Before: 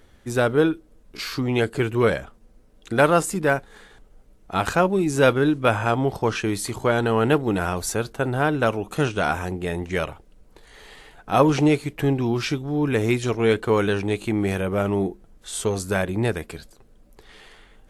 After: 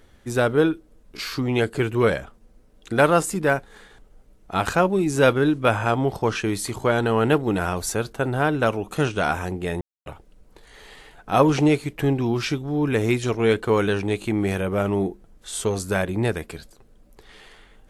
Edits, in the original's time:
0:09.81–0:10.06: silence

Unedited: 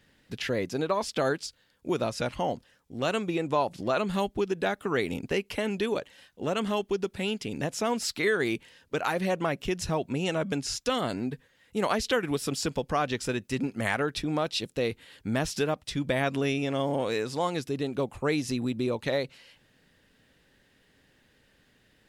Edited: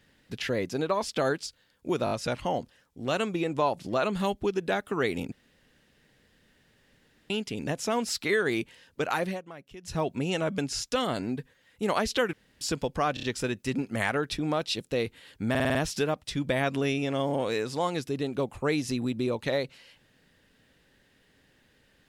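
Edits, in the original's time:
0:02.05: stutter 0.02 s, 4 plays
0:05.26–0:07.24: fill with room tone
0:09.18–0:09.93: duck −16.5 dB, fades 0.17 s
0:12.27–0:12.55: fill with room tone
0:13.08: stutter 0.03 s, 4 plays
0:15.35: stutter 0.05 s, 6 plays

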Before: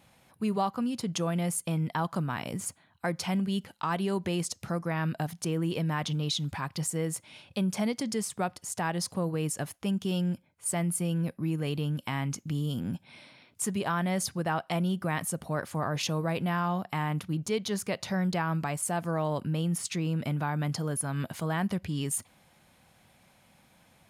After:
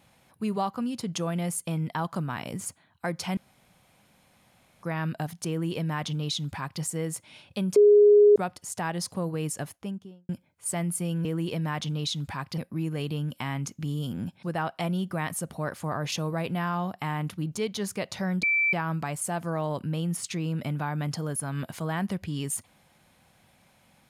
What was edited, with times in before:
0:03.37–0:04.83: fill with room tone
0:05.49–0:06.82: duplicate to 0:11.25
0:07.76–0:08.36: beep over 414 Hz −12.5 dBFS
0:09.57–0:10.29: fade out and dull
0:13.10–0:14.34: remove
0:18.34: insert tone 2,330 Hz −20.5 dBFS 0.30 s

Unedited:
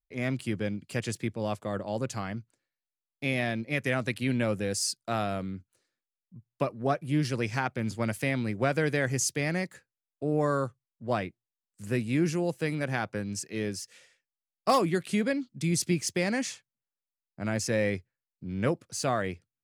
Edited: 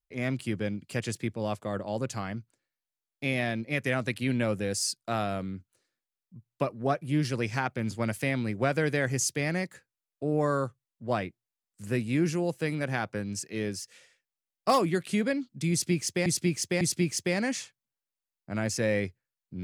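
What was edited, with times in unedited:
0:15.71–0:16.26: repeat, 3 plays

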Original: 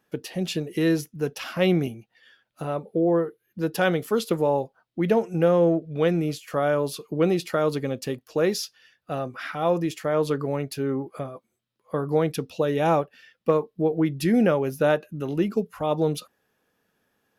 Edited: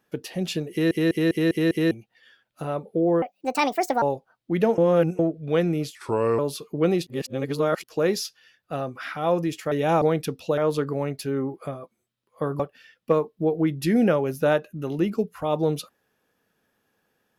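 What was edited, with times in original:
0:00.71: stutter in place 0.20 s, 6 plays
0:03.22–0:04.50: play speed 160%
0:05.26–0:05.67: reverse
0:06.43–0:06.77: play speed 78%
0:07.45–0:08.22: reverse
0:10.10–0:12.12: swap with 0:12.68–0:12.98

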